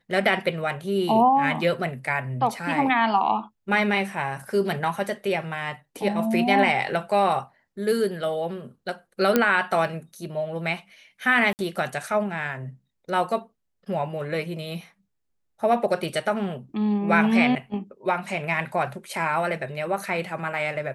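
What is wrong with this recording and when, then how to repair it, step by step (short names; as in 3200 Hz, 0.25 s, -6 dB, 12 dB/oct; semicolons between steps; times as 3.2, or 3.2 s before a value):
9.36 pop -5 dBFS
11.53–11.59 gap 59 ms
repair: de-click; interpolate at 11.53, 59 ms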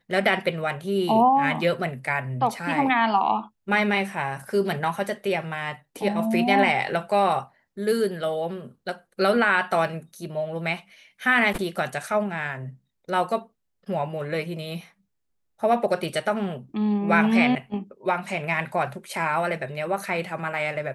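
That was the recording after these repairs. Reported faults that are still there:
none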